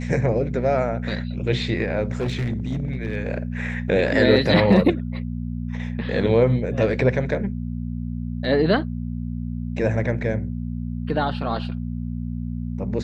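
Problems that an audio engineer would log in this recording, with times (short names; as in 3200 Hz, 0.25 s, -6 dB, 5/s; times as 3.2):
hum 60 Hz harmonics 4 -28 dBFS
2.13–3.17 clipped -20 dBFS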